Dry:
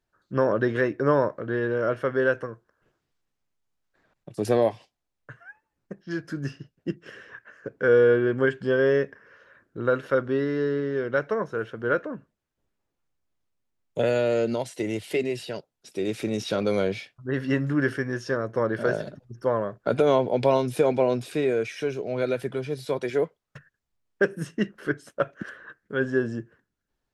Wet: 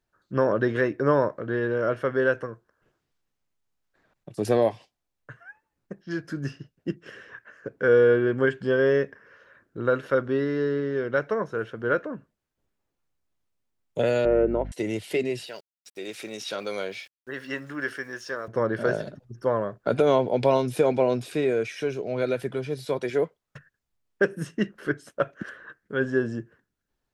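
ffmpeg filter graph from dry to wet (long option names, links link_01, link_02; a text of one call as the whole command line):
ffmpeg -i in.wav -filter_complex "[0:a]asettb=1/sr,asplit=3[link_01][link_02][link_03];[link_01]atrim=end=14.254[link_04];[link_02]atrim=start=14.25:end=14.72,asetpts=PTS-STARTPTS,afade=type=in:duration=0.004:curve=qsin,afade=type=out:start_time=0.466:duration=0.004:curve=qsin,lowpass=frequency=1900:width=0.5412,lowpass=frequency=1900:width=1.3066,lowshelf=frequency=230:width_type=q:width=3:gain=-9.5,aeval=exprs='val(0)+0.02*(sin(2*PI*50*n/s)+sin(2*PI*2*50*n/s)/2+sin(2*PI*3*50*n/s)/3+sin(2*PI*4*50*n/s)/4+sin(2*PI*5*50*n/s)/5)':channel_layout=same[link_05];[link_03]atrim=start=14.716[link_06];[link_04][link_05]acrossfade=duration=0.004:curve1=hsin:curve2=qsin[link_07];[link_07][link_06]acrossfade=duration=0.004:curve1=qsin:curve2=hsin,asettb=1/sr,asplit=3[link_08][link_09][link_10];[link_08]atrim=end=15.464[link_11];[link_09]atrim=start=15.46:end=18.48,asetpts=PTS-STARTPTS,afade=type=in:duration=0.004:curve=qsin,afade=type=out:start_time=3.016:duration=0.004:curve=qsin,highpass=frequency=1000:poles=1,agate=range=-13dB:threshold=-50dB:ratio=16:release=100:detection=peak,aeval=exprs='val(0)*gte(abs(val(0)),0.00168)':channel_layout=same[link_12];[link_10]atrim=start=18.476[link_13];[link_11][link_12]acrossfade=duration=0.004:curve1=hsin:curve2=qsin[link_14];[link_14][link_13]acrossfade=duration=0.004:curve1=qsin:curve2=hsin" out.wav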